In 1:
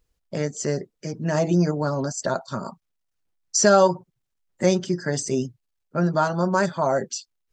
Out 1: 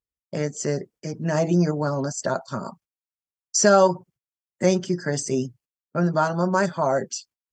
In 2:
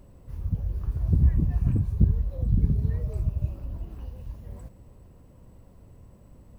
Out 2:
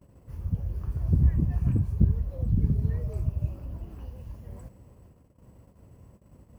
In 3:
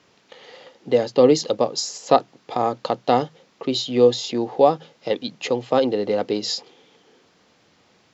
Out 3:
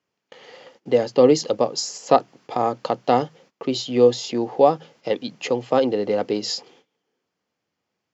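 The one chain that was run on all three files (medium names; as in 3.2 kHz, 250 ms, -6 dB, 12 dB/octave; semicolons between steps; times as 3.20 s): gate -50 dBFS, range -21 dB; high-pass 54 Hz; peaking EQ 3.8 kHz -6.5 dB 0.24 oct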